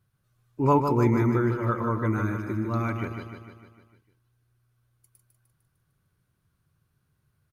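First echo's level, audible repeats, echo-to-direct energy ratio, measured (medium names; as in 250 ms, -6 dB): -6.5 dB, 6, -5.0 dB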